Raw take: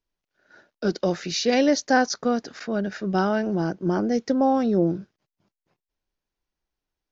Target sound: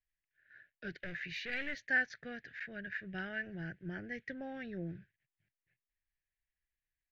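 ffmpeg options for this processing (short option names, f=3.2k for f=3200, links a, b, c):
-filter_complex "[0:a]asettb=1/sr,asplit=3[a][b][c];[a]atrim=end=0.994[d];[b]atrim=start=0.99:end=1.85,asetpts=PTS-STARTPTS,afade=t=in:d=0.004:c=qsin,afade=t=out:st=0.856:d=0.004:c=qsin,volume=20.5dB,asoftclip=hard,volume=-20.5dB[e];[c]atrim=start=1.846[f];[d][e]acrossfade=d=0.004:c1=hsin:c2=qsin[g];[g][f]acrossfade=d=0.004:c1=qsin:c2=hsin,firequalizer=gain_entry='entry(130,0);entry(210,-16);entry(660,-16);entry(1100,-28);entry(1700,10);entry(5200,-22)':delay=0.05:min_phase=1,volume=-7.5dB"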